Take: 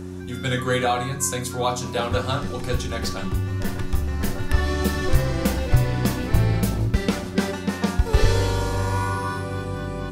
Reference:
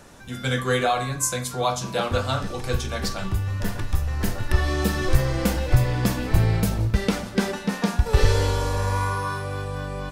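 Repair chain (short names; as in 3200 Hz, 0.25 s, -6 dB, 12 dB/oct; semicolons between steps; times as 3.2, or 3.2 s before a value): de-hum 91.4 Hz, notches 4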